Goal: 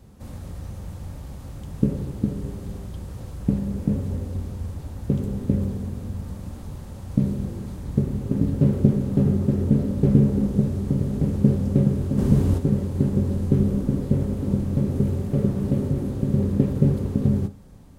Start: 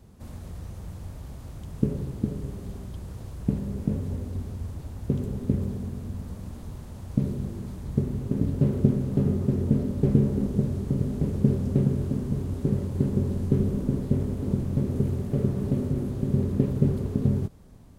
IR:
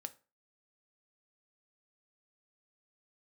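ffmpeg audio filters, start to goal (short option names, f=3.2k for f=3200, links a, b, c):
-filter_complex "[0:a]asplit=3[a][b][c];[a]afade=t=out:st=12.17:d=0.02[d];[b]acontrast=88,afade=t=in:st=12.17:d=0.02,afade=t=out:st=12.57:d=0.02[e];[c]afade=t=in:st=12.57:d=0.02[f];[d][e][f]amix=inputs=3:normalize=0[g];[1:a]atrim=start_sample=2205[h];[g][h]afir=irnorm=-1:irlink=0,volume=7dB"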